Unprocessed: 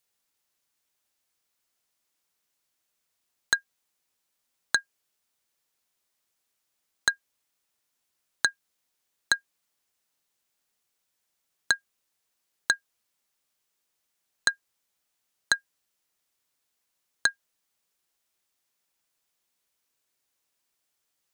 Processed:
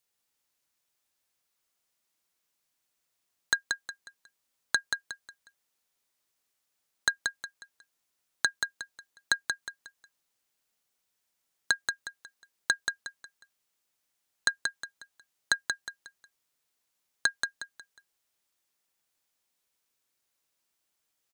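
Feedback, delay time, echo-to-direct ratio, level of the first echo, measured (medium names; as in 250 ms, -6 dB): 33%, 181 ms, -4.5 dB, -5.0 dB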